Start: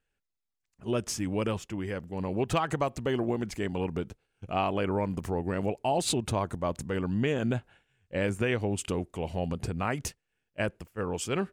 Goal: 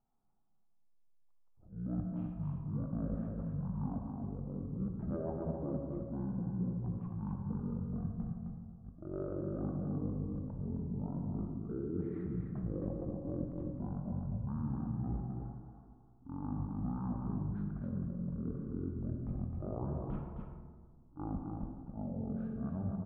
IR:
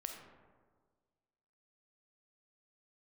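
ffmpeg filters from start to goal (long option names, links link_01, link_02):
-filter_complex "[0:a]lowpass=frequency=2100:width=0.5412,lowpass=frequency=2100:width=1.3066,equalizer=frequency=320:width_type=o:width=0.98:gain=7,areverse,acompressor=threshold=-36dB:ratio=6,areverse,aecho=1:1:131:0.562[link_01];[1:a]atrim=start_sample=2205,asetrate=74970,aresample=44100[link_02];[link_01][link_02]afir=irnorm=-1:irlink=0,asetrate=22050,aresample=44100,volume=6.5dB"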